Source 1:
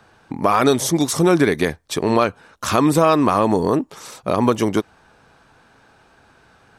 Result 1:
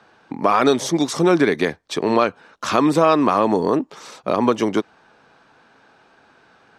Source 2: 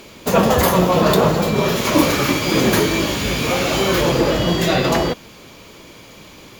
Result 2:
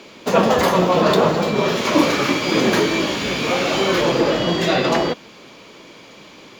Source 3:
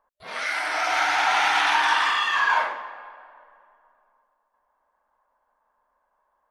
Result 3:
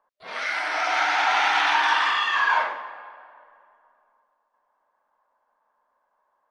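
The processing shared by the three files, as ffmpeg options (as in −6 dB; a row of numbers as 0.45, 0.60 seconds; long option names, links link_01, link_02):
-filter_complex "[0:a]acrossover=split=160 6600:gain=0.2 1 0.178[link_01][link_02][link_03];[link_01][link_02][link_03]amix=inputs=3:normalize=0"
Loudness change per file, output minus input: −0.5, −1.0, 0.0 LU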